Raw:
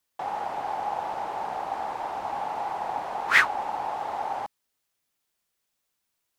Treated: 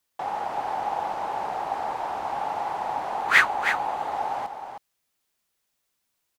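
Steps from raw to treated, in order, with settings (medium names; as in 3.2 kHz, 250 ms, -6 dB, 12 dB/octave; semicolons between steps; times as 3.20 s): 3.21–4.12 s: band-stop 5.3 kHz, Q 11; delay 316 ms -8 dB; trim +1.5 dB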